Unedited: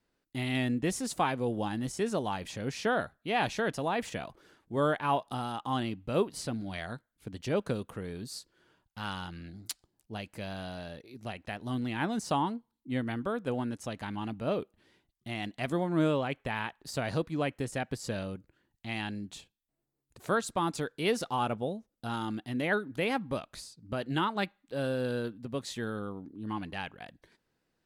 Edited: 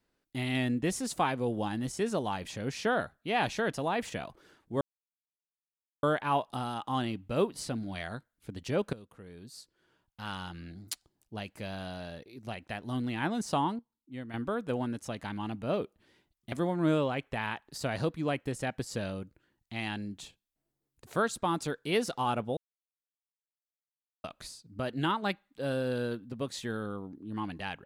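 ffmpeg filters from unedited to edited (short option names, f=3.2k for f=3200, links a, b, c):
-filter_complex "[0:a]asplit=8[a][b][c][d][e][f][g][h];[a]atrim=end=4.81,asetpts=PTS-STARTPTS,afade=t=out:st=4.806:d=0.004:c=hsin,apad=pad_dur=1.22[i];[b]atrim=start=4.81:end=7.71,asetpts=PTS-STARTPTS,afade=t=in:d=0.004:c=hsin,afade=t=out:st=2.896:d=0.004:c=hsin:silence=0.149624[j];[c]atrim=start=7.71:end=12.572,asetpts=PTS-STARTPTS,afade=t=in:d=1.74:silence=0.149624[k];[d]atrim=start=12.568:end=13.122,asetpts=PTS-STARTPTS,volume=-9dB[l];[e]atrim=start=13.118:end=15.302[m];[f]atrim=start=15.648:end=21.7,asetpts=PTS-STARTPTS,afade=t=out:st=6.048:d=0.004:c=hsin[n];[g]atrim=start=21.7:end=23.37,asetpts=PTS-STARTPTS,volume=0[o];[h]atrim=start=23.37,asetpts=PTS-STARTPTS,afade=t=in:d=0.004:c=hsin[p];[i][j][k]concat=n=3:v=0:a=1[q];[q][l]acrossfade=d=0.004:c1=hsin:c2=hsin[r];[r][m]acrossfade=d=0.004:c1=hsin:c2=hsin[s];[n][o][p]concat=n=3:v=0:a=1[t];[s][t]acrossfade=d=0.004:c1=hsin:c2=hsin"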